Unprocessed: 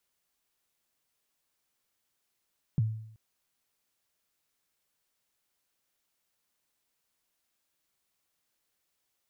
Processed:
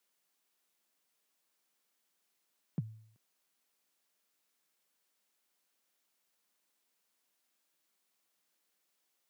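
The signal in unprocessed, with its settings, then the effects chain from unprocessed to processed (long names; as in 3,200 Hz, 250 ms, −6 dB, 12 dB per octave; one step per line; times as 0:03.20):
synth kick length 0.38 s, from 170 Hz, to 110 Hz, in 27 ms, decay 0.70 s, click off, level −20.5 dB
high-pass filter 170 Hz 24 dB per octave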